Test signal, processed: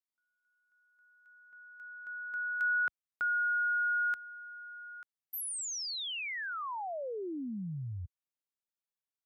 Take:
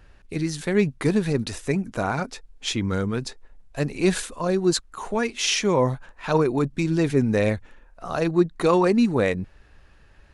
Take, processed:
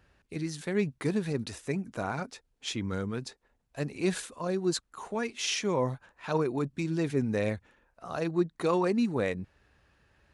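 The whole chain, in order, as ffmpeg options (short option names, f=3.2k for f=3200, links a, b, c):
-af "highpass=68,volume=-8dB"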